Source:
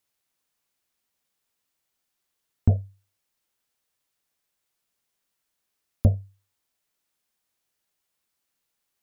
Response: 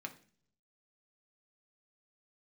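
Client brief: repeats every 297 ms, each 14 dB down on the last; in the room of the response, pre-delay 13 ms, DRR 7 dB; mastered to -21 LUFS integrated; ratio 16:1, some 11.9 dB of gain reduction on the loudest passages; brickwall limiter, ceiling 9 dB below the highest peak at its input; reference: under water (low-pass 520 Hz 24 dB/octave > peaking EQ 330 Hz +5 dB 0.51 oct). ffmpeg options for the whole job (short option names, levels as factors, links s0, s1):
-filter_complex "[0:a]acompressor=threshold=0.0631:ratio=16,alimiter=limit=0.0944:level=0:latency=1,aecho=1:1:297|594:0.2|0.0399,asplit=2[s0][s1];[1:a]atrim=start_sample=2205,adelay=13[s2];[s1][s2]afir=irnorm=-1:irlink=0,volume=0.531[s3];[s0][s3]amix=inputs=2:normalize=0,lowpass=f=520:w=0.5412,lowpass=f=520:w=1.3066,equalizer=f=330:t=o:w=0.51:g=5,volume=9.44"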